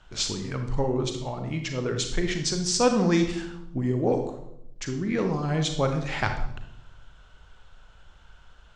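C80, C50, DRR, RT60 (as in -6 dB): 10.0 dB, 7.0 dB, 5.0 dB, 0.80 s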